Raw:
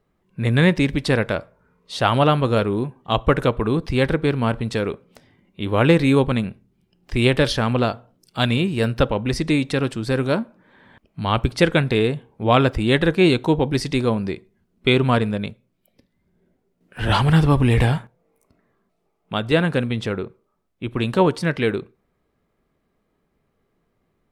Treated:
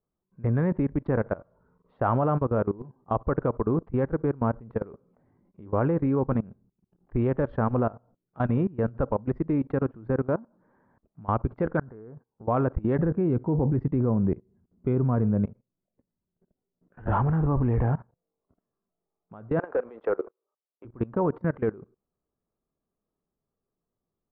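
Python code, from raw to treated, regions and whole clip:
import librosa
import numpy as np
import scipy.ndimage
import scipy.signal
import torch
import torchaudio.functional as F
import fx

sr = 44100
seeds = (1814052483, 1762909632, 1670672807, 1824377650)

y = fx.chain(x, sr, fx.high_shelf_res(hz=2100.0, db=-10.5, q=3.0),
    fx.level_steps(step_db=16), at=(11.77, 12.48))
y = fx.chain(y, sr, fx.highpass(hz=49.0, slope=12),
    fx.low_shelf(hz=320.0, db=11.0), at=(12.98, 15.46))
y = fx.chain(y, sr, fx.highpass(hz=430.0, slope=24),
    fx.peak_eq(hz=1400.0, db=-4.0, octaves=2.2),
    fx.leveller(passes=3), at=(19.59, 20.85))
y = scipy.signal.sosfilt(scipy.signal.butter(4, 1300.0, 'lowpass', fs=sr, output='sos'), y)
y = fx.level_steps(y, sr, step_db=21)
y = y * 10.0 ** (-2.0 / 20.0)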